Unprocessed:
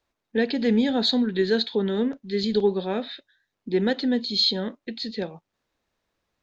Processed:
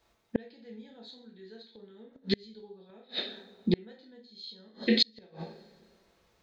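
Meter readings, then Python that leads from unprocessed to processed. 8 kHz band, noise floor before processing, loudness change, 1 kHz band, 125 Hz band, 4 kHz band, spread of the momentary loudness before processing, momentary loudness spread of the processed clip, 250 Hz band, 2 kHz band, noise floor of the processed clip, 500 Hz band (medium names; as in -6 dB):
no reading, -82 dBFS, -7.5 dB, -18.0 dB, -6.5 dB, -7.5 dB, 12 LU, 23 LU, -11.0 dB, -8.5 dB, -70 dBFS, -13.5 dB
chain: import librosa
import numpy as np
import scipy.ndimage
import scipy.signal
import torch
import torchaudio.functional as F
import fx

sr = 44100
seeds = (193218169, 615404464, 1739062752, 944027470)

y = fx.rev_double_slope(x, sr, seeds[0], early_s=0.45, late_s=1.8, knee_db=-27, drr_db=-1.5)
y = fx.gate_flip(y, sr, shuts_db=-18.0, range_db=-36)
y = fx.dynamic_eq(y, sr, hz=3300.0, q=1.1, threshold_db=-54.0, ratio=4.0, max_db=4)
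y = y * librosa.db_to_amplitude(5.0)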